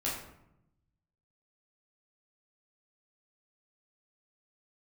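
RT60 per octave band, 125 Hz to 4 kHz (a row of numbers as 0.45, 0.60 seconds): 1.5, 1.2, 0.85, 0.80, 0.65, 0.45 seconds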